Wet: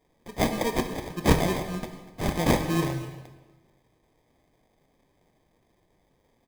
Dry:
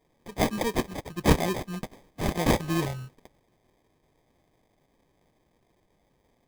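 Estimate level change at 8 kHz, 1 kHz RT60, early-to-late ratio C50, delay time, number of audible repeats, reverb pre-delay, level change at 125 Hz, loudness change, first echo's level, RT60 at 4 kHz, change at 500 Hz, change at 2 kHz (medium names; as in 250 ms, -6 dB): +1.0 dB, 1.2 s, 8.0 dB, 243 ms, 1, 18 ms, +1.5 dB, +1.0 dB, -19.0 dB, 1.0 s, +1.0 dB, +1.0 dB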